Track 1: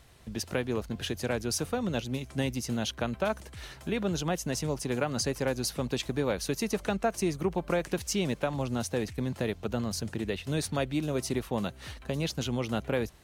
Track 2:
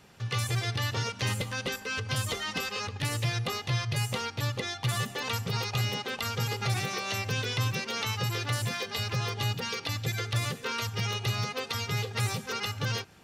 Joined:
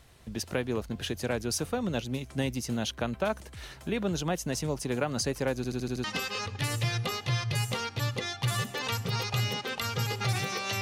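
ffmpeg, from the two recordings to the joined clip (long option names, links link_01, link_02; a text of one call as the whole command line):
ffmpeg -i cue0.wav -i cue1.wav -filter_complex "[0:a]apad=whole_dur=10.81,atrim=end=10.81,asplit=6[link_01][link_02][link_03][link_04][link_05][link_06];[link_01]atrim=end=5.642[link_07];[link_02]atrim=start=5.558:end=5.642[link_08];[link_03]atrim=start=5.558:end=5.642[link_09];[link_04]atrim=start=5.558:end=5.642[link_10];[link_05]atrim=start=5.558:end=5.642[link_11];[link_06]atrim=start=5.558:end=5.642[link_12];[1:a]atrim=start=2.448:end=7.22[link_13];[link_07][link_08]acrossfade=duration=0.004:curve1=hsin:curve2=hsin[link_14];[link_14][link_09]acrossfade=duration=0.004:curve1=hsin:curve2=hsin[link_15];[link_15][link_10]acrossfade=duration=0.004:curve1=hsin:curve2=hsin[link_16];[link_16][link_11]acrossfade=duration=0.004:curve1=hsin:curve2=hsin[link_17];[link_17][link_12]acrossfade=duration=0.004:curve1=hsin:curve2=hsin[link_18];[link_18][link_13]acrossfade=duration=0.004:curve1=hsin:curve2=hsin" out.wav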